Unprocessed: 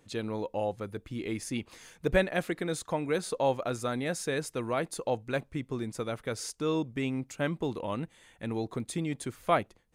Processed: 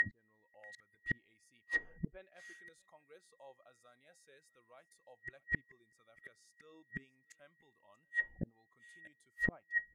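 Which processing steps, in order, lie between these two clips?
whine 1900 Hz -33 dBFS; flipped gate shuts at -28 dBFS, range -40 dB; on a send: echo 0.638 s -22 dB; on the sum: treble ducked by the level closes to 350 Hz, closed at -34 dBFS; spectral noise reduction 13 dB; gain +11 dB

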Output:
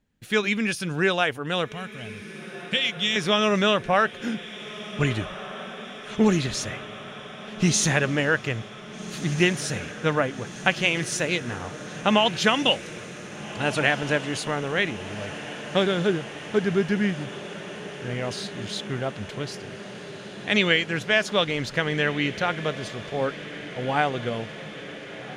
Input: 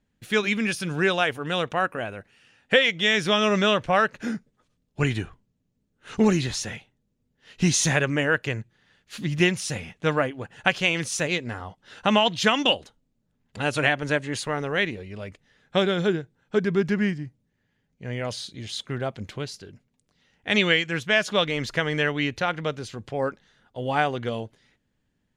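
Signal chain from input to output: 1.72–3.16 band shelf 730 Hz -14.5 dB 3 oct; on a send: diffused feedback echo 1.622 s, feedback 76%, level -14.5 dB

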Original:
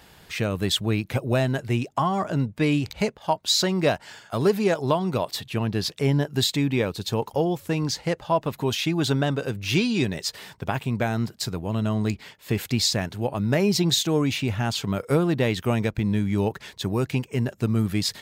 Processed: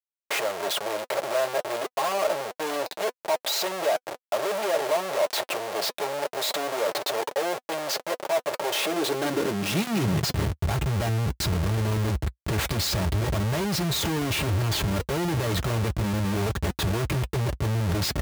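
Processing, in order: Schmitt trigger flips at -35 dBFS; notch comb 250 Hz; high-pass sweep 570 Hz -> 60 Hz, 8.69–10.78; gain -1 dB

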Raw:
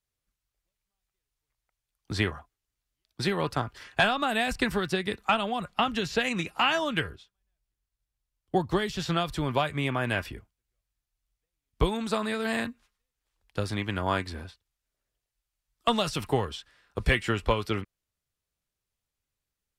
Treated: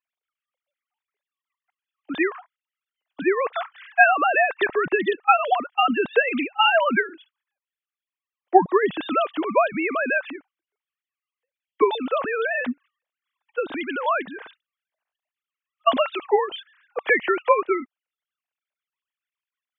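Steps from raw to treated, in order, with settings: sine-wave speech; gain +6.5 dB

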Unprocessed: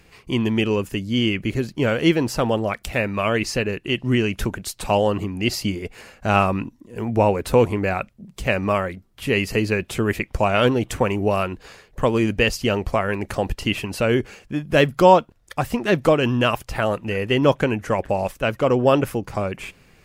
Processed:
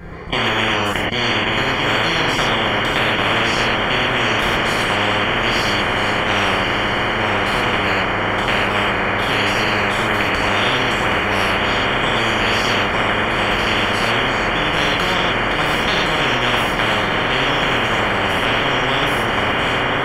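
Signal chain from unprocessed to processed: level quantiser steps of 22 dB; polynomial smoothing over 41 samples; on a send: diffused feedback echo 1.153 s, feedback 62%, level -8.5 dB; on the sum: non-linear reverb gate 0.15 s flat, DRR -6.5 dB; spectral compressor 10:1

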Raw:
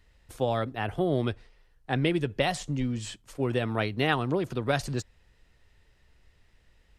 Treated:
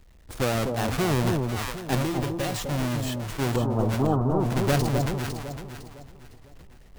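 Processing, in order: half-waves squared off; 3.56–4.46 steep low-pass 1200 Hz 48 dB/oct; in parallel at +2 dB: compressor, threshold -32 dBFS, peak gain reduction 16.5 dB; 1.96–2.56 on the sum: resonator 110 Hz, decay 0.21 s, harmonics odd, mix 70%; on a send: echo with dull and thin repeats by turns 0.253 s, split 930 Hz, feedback 58%, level -3.5 dB; on the sum: sustainer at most 32 dB/s; gain -5.5 dB

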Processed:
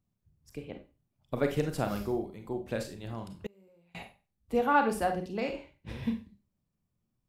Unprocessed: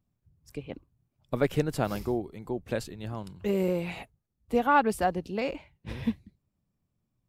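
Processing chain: Schroeder reverb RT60 0.31 s, combs from 31 ms, DRR 5.5 dB; 3.46–3.95 flipped gate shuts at -25 dBFS, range -32 dB; gain -3.5 dB

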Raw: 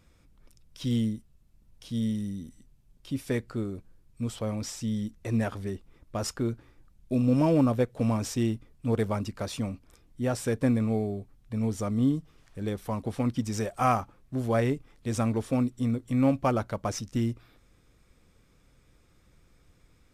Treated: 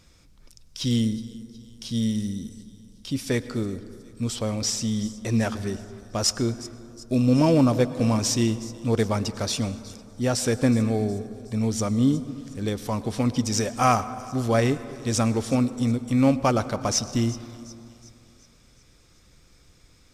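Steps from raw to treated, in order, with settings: bell 5400 Hz +10 dB 1.4 oct; thin delay 0.367 s, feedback 52%, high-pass 3800 Hz, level -16.5 dB; reverb RT60 2.6 s, pre-delay 93 ms, DRR 14 dB; gain +4 dB

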